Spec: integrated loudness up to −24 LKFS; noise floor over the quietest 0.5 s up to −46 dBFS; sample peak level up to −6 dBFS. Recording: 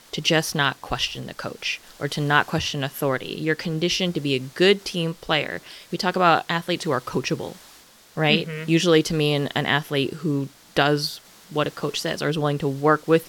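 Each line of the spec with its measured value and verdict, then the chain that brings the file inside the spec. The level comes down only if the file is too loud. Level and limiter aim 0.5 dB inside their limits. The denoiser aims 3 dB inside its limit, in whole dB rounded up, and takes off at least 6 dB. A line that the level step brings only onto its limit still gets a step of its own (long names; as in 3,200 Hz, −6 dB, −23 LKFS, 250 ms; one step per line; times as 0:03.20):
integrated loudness −23.0 LKFS: out of spec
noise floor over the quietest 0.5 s −50 dBFS: in spec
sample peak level −3.0 dBFS: out of spec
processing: level −1.5 dB
brickwall limiter −6.5 dBFS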